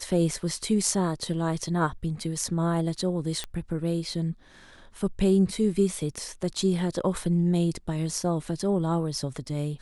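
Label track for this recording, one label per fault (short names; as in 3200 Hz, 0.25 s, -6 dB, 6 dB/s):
3.440000	3.440000	pop -17 dBFS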